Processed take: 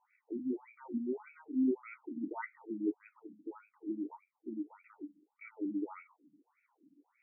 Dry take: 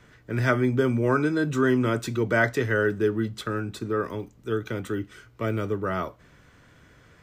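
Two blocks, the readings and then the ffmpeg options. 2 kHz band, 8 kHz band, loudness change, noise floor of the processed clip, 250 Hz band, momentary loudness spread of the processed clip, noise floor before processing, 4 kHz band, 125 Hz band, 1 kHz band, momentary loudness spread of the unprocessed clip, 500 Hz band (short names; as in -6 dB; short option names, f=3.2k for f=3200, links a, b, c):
-25.0 dB, under -35 dB, -14.0 dB, -83 dBFS, -10.0 dB, 18 LU, -56 dBFS, under -40 dB, under -30 dB, -19.0 dB, 10 LU, -18.5 dB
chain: -filter_complex "[0:a]asplit=3[a][b][c];[a]bandpass=f=300:t=q:w=8,volume=0dB[d];[b]bandpass=f=870:t=q:w=8,volume=-6dB[e];[c]bandpass=f=2.24k:t=q:w=8,volume=-9dB[f];[d][e][f]amix=inputs=3:normalize=0,afftfilt=real='re*between(b*sr/1024,210*pow(1900/210,0.5+0.5*sin(2*PI*1.7*pts/sr))/1.41,210*pow(1900/210,0.5+0.5*sin(2*PI*1.7*pts/sr))*1.41)':imag='im*between(b*sr/1024,210*pow(1900/210,0.5+0.5*sin(2*PI*1.7*pts/sr))/1.41,210*pow(1900/210,0.5+0.5*sin(2*PI*1.7*pts/sr))*1.41)':win_size=1024:overlap=0.75,volume=4.5dB"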